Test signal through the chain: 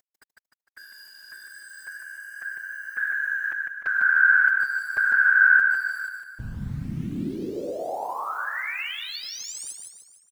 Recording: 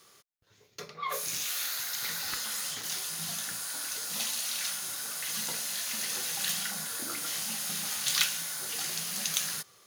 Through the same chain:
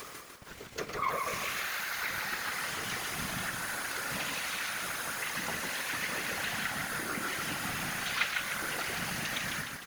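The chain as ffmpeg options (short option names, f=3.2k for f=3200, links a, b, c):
-filter_complex "[0:a]acrossover=split=4200[a][b];[b]acompressor=threshold=-40dB:ratio=4:attack=1:release=60[c];[a][c]amix=inputs=2:normalize=0,highpass=42,highshelf=f=2.8k:t=q:w=1.5:g=-7,acompressor=mode=upward:threshold=-31dB:ratio=2.5,aeval=exprs='val(0)*gte(abs(val(0)),0.00562)':c=same,asplit=2[d][e];[e]aecho=0:1:151|302|453|604|755|906:0.631|0.309|0.151|0.0742|0.0364|0.0178[f];[d][f]amix=inputs=2:normalize=0,afftfilt=real='hypot(re,im)*cos(2*PI*random(0))':imag='hypot(re,im)*sin(2*PI*random(1))':win_size=512:overlap=0.75,volume=7dB"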